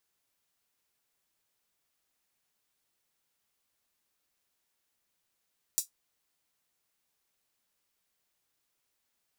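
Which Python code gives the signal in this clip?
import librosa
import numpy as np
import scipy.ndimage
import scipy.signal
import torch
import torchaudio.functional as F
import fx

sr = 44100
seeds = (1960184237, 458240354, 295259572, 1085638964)

y = fx.drum_hat(sr, length_s=0.24, from_hz=6300.0, decay_s=0.13)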